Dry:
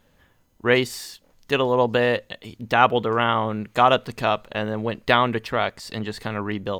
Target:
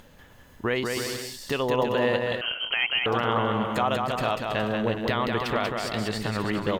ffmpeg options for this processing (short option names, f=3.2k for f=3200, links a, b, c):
-filter_complex "[0:a]asplit=2[a][b];[b]acompressor=threshold=-33dB:ratio=6,volume=3dB[c];[a][c]amix=inputs=2:normalize=0,alimiter=limit=-11dB:level=0:latency=1:release=306,acompressor=mode=upward:threshold=-43dB:ratio=2.5,aecho=1:1:190|323|416.1|481.3|526.9:0.631|0.398|0.251|0.158|0.1,asettb=1/sr,asplit=3[d][e][f];[d]atrim=end=2.414[g];[e]atrim=start=2.41:end=3.06,asetpts=PTS-STARTPTS,afade=t=in:d=0.004:c=qsin,afade=t=out:st=0.646:d=0.004:c=qsin,lowpass=f=2.8k:t=q:w=0.5098,lowpass=f=2.8k:t=q:w=0.6013,lowpass=f=2.8k:t=q:w=0.9,lowpass=f=2.8k:t=q:w=2.563,afreqshift=-3300[h];[f]atrim=start=3.056[i];[g][h]acrossfade=d=0.004:c1=hsin:c2=qsin[j];[j][i]acrossfade=d=0.004:c1=qsin:c2=hsin,volume=-3.5dB"